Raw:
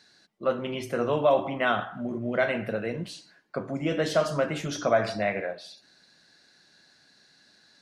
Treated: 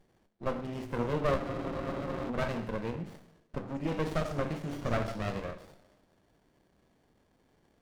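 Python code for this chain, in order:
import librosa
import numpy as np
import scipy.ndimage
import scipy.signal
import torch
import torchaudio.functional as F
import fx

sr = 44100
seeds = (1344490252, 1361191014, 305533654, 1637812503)

y = fx.rev_double_slope(x, sr, seeds[0], early_s=0.75, late_s=2.0, knee_db=-18, drr_db=8.5)
y = fx.spec_freeze(y, sr, seeds[1], at_s=1.41, hold_s=0.87)
y = fx.running_max(y, sr, window=33)
y = y * librosa.db_to_amplitude(-4.5)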